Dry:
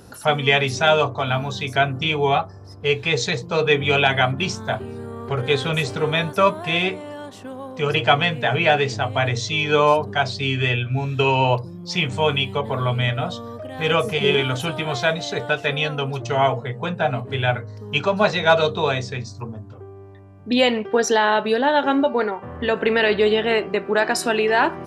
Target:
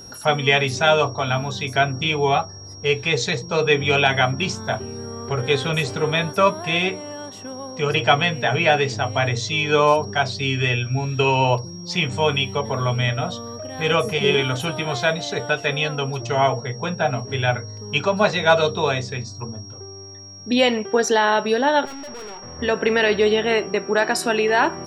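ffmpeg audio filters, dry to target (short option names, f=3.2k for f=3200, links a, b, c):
-filter_complex "[0:a]asettb=1/sr,asplit=3[a][b][c];[a]atrim=end=21.854[d];[b]atrim=start=21.85:end=22.59,asetpts=PTS-STARTPTS,afade=t=in:d=0.004:c=qsin,afade=t=out:st=0.736:d=0.004:c=qsin,aeval=exprs='(tanh(56.2*val(0)+0.4)-tanh(0.4))/56.2':c=same[e];[c]atrim=start=22.586[f];[d][e]acrossfade=d=0.004:c1=hsin:c2=qsin[g];[g][f]acrossfade=d=0.004:c1=qsin:c2=hsin,aeval=exprs='val(0)+0.0112*sin(2*PI*5600*n/s)':c=same"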